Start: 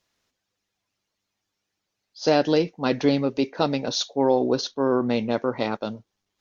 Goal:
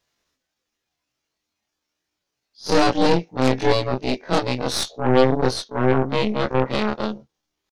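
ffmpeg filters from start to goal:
-af "afftfilt=real='re':imag='-im':win_size=2048:overlap=0.75,aeval=exprs='0.355*(cos(1*acos(clip(val(0)/0.355,-1,1)))-cos(1*PI/2))+0.0112*(cos(3*acos(clip(val(0)/0.355,-1,1)))-cos(3*PI/2))+0.0562*(cos(8*acos(clip(val(0)/0.355,-1,1)))-cos(8*PI/2))':c=same,atempo=0.83,volume=2"

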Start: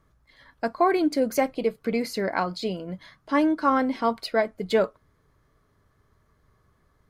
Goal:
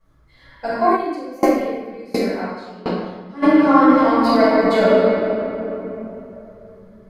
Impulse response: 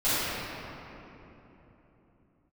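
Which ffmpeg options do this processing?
-filter_complex "[1:a]atrim=start_sample=2205[s0];[0:a][s0]afir=irnorm=-1:irlink=0,asplit=3[s1][s2][s3];[s1]afade=t=out:st=0.95:d=0.02[s4];[s2]aeval=exprs='val(0)*pow(10,-23*if(lt(mod(1.4*n/s,1),2*abs(1.4)/1000),1-mod(1.4*n/s,1)/(2*abs(1.4)/1000),(mod(1.4*n/s,1)-2*abs(1.4)/1000)/(1-2*abs(1.4)/1000))/20)':c=same,afade=t=in:st=0.95:d=0.02,afade=t=out:st=3.42:d=0.02[s5];[s3]afade=t=in:st=3.42:d=0.02[s6];[s4][s5][s6]amix=inputs=3:normalize=0,volume=0.473"

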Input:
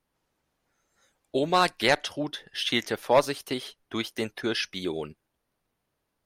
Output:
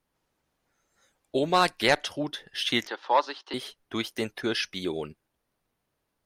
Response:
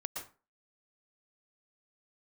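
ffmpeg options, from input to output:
-filter_complex "[0:a]asettb=1/sr,asplit=3[s0][s1][s2];[s0]atrim=end=2.874[s3];[s1]atrim=start=2.87:end=3.54,asetpts=PTS-STARTPTS,afade=t=in:d=0.004:c=qsin,afade=t=out:st=0.666:d=0.004:c=qsin,highpass=f=360:w=0.5412,highpass=f=360:w=1.3066,equalizer=f=440:t=q:w=4:g=-9,equalizer=f=640:t=q:w=4:g=-8,equalizer=f=910:t=q:w=4:g=6,equalizer=f=2300:t=q:w=4:g=-9,lowpass=f=4500:w=0.5412,lowpass=f=4500:w=1.3066[s4];[s2]atrim=start=3.536[s5];[s3][s4]acrossfade=d=0.004:c1=hsin:c2=qsin[s6];[s6][s5]acrossfade=d=0.004:c1=qsin:c2=hsin"

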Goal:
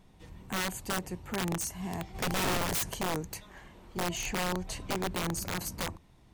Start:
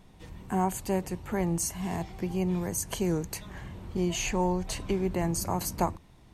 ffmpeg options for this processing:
-filter_complex "[0:a]asplit=3[s0][s1][s2];[s0]afade=t=out:st=2.14:d=0.02[s3];[s1]acontrast=90,afade=t=in:st=2.14:d=0.02,afade=t=out:st=2.89:d=0.02[s4];[s2]afade=t=in:st=2.89:d=0.02[s5];[s3][s4][s5]amix=inputs=3:normalize=0,asettb=1/sr,asplit=3[s6][s7][s8];[s6]atrim=end=3.404[s9];[s7]atrim=start=3.4:end=3.97,asetpts=PTS-STARTPTS,afade=t=in:d=0.004:c=qsin,afade=t=out:st=0.566:d=0.004:c=qsin,equalizer=f=100:t=o:w=2:g=-14[s10];[s8]atrim=start=3.966[s11];[s9][s10]acrossfade=d=0.004:c1=hsin:c2=qsin[s12];[s12][s11]acrossfade=d=0.004:c1=qsin:c2=hsin,aeval=exprs='(mod(11.2*val(0)+1,2)-1)/11.2':c=same,volume=0.631"

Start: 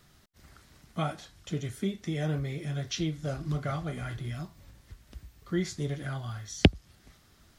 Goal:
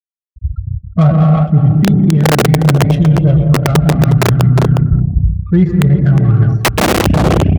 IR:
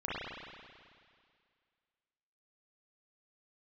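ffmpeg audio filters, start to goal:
-filter_complex "[0:a]asplit=2[s0][s1];[1:a]atrim=start_sample=2205,adelay=128[s2];[s1][s2]afir=irnorm=-1:irlink=0,volume=0.398[s3];[s0][s3]amix=inputs=2:normalize=0,afftfilt=real='re*gte(hypot(re,im),0.0158)':imag='im*gte(hypot(re,im),0.0158)':win_size=1024:overlap=0.75,flanger=delay=0.7:depth=1.1:regen=-19:speed=0.45:shape=sinusoidal,bass=f=250:g=12,treble=f=4000:g=-10,adynamicsmooth=sensitivity=6.5:basefreq=900,lowshelf=f=260:g=5,aeval=exprs='(mod(3.98*val(0)+1,2)-1)/3.98':c=same,highpass=f=120:p=1,asplit=2[s4][s5];[s5]adelay=360,highpass=300,lowpass=3400,asoftclip=type=hard:threshold=0.126,volume=0.398[s6];[s4][s6]amix=inputs=2:normalize=0,areverse,acompressor=threshold=0.0112:ratio=6,areverse,alimiter=level_in=44.7:limit=0.891:release=50:level=0:latency=1,volume=0.891"

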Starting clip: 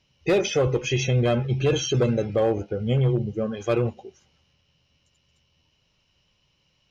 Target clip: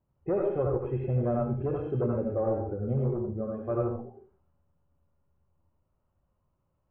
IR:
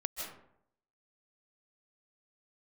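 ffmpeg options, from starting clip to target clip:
-filter_complex "[0:a]lowpass=f=1200:w=0.5412,lowpass=f=1200:w=1.3066,bandreject=f=460:w=14[s0];[1:a]atrim=start_sample=2205,asetrate=88200,aresample=44100[s1];[s0][s1]afir=irnorm=-1:irlink=0"

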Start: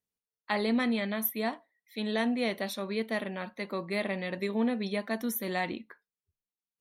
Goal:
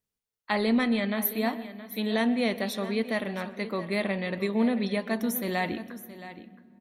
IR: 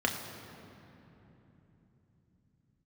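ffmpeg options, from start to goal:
-filter_complex "[0:a]lowshelf=f=110:g=8,aecho=1:1:671:0.188,asplit=2[s0][s1];[1:a]atrim=start_sample=2205,adelay=124[s2];[s1][s2]afir=irnorm=-1:irlink=0,volume=0.0531[s3];[s0][s3]amix=inputs=2:normalize=0,volume=1.33"

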